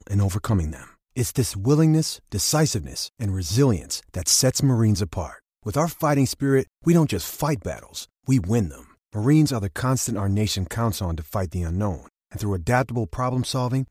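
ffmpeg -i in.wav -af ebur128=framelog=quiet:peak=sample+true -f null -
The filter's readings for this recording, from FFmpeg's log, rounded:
Integrated loudness:
  I:         -23.0 LUFS
  Threshold: -33.3 LUFS
Loudness range:
  LRA:         4.1 LU
  Threshold: -43.1 LUFS
  LRA low:   -25.6 LUFS
  LRA high:  -21.5 LUFS
Sample peak:
  Peak:       -5.6 dBFS
True peak:
  Peak:       -5.6 dBFS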